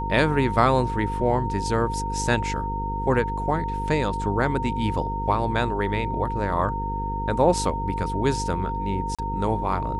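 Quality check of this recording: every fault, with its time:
mains buzz 50 Hz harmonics 10 −30 dBFS
whistle 920 Hz −28 dBFS
0:09.15–0:09.19: drop-out 36 ms

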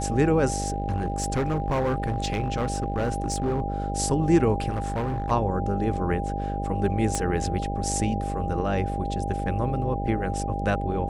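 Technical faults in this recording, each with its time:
mains buzz 50 Hz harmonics 13 −30 dBFS
whistle 800 Hz −31 dBFS
0:00.68–0:03.61: clipping −20.5 dBFS
0:04.69–0:05.32: clipping −23.5 dBFS
0:07.15: click −13 dBFS

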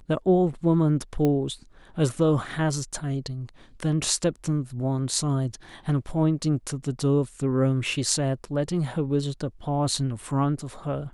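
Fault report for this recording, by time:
0:01.25: click −13 dBFS

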